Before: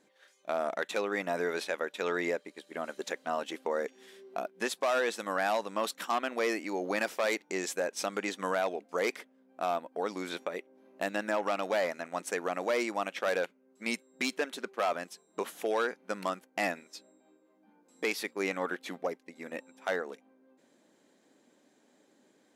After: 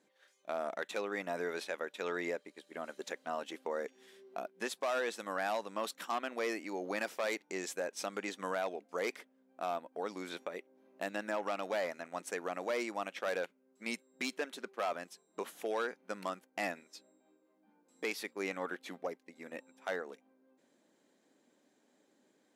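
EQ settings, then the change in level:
high-pass filter 99 Hz
−5.5 dB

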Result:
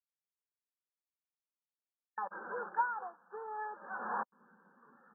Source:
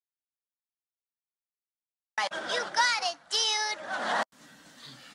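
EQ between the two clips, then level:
linear-phase brick-wall band-pass 170–1,800 Hz
phaser with its sweep stopped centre 430 Hz, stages 8
−4.5 dB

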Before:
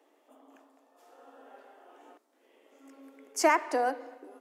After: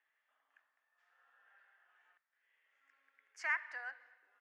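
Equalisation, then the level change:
four-pole ladder band-pass 1,900 Hz, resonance 65%
0.0 dB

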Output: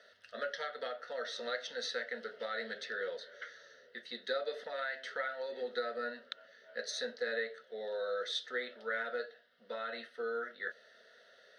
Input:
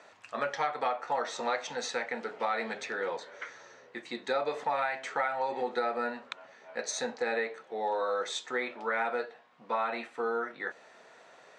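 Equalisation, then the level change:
phaser with its sweep stopped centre 340 Hz, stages 4
phaser with its sweep stopped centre 1,600 Hz, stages 8
+1.0 dB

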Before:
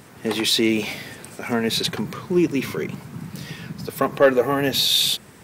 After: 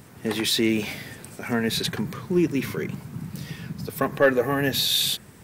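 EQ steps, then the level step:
low-shelf EQ 190 Hz +8.5 dB
high-shelf EQ 9,300 Hz +6 dB
dynamic equaliser 1,700 Hz, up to +6 dB, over −43 dBFS, Q 3.4
−5.0 dB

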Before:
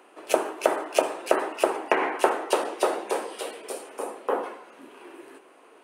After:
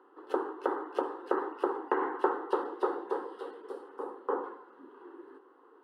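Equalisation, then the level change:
high-frequency loss of the air 430 metres
phaser with its sweep stopped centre 640 Hz, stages 6
−2.0 dB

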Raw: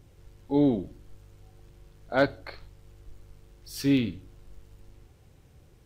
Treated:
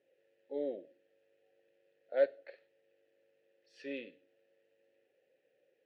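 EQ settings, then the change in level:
formant filter e
high-pass filter 270 Hz 12 dB per octave
low-pass filter 6,700 Hz
0.0 dB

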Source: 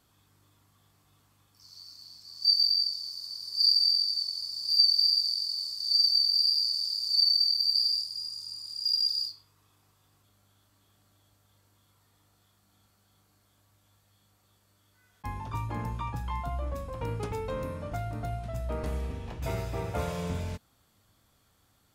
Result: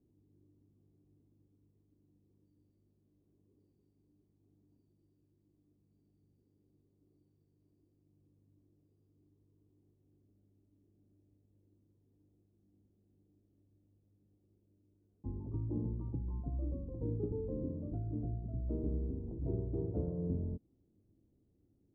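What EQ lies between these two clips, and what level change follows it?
transistor ladder low-pass 390 Hz, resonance 55%
+6.0 dB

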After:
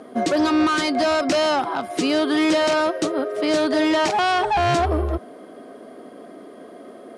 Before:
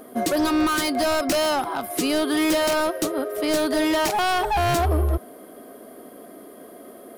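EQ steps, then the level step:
high-pass filter 96 Hz 12 dB per octave
Bessel low-pass filter 5,800 Hz, order 6
+2.5 dB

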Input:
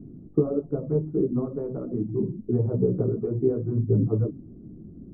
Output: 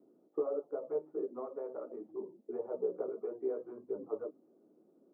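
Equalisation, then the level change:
four-pole ladder high-pass 490 Hz, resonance 30%
notch filter 690 Hz, Q 16
+3.0 dB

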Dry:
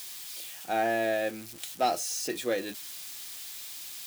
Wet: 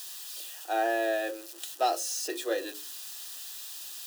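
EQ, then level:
Butterworth high-pass 300 Hz 72 dB per octave
Butterworth band-reject 2,200 Hz, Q 4.7
mains-hum notches 60/120/180/240/300/360/420/480/540 Hz
0.0 dB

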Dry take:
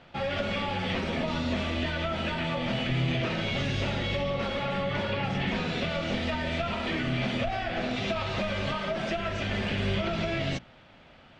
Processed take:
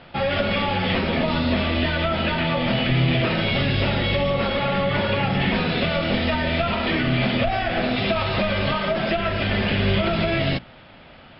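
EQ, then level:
linear-phase brick-wall low-pass 5,400 Hz
+8.0 dB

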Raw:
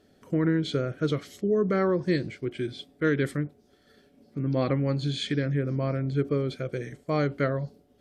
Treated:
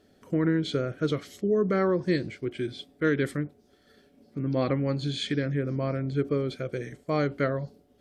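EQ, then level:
parametric band 140 Hz −2.5 dB 0.41 octaves
0.0 dB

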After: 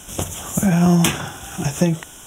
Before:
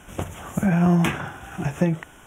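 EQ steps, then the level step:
high shelf with overshoot 3,000 Hz +11.5 dB, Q 1.5
+3.5 dB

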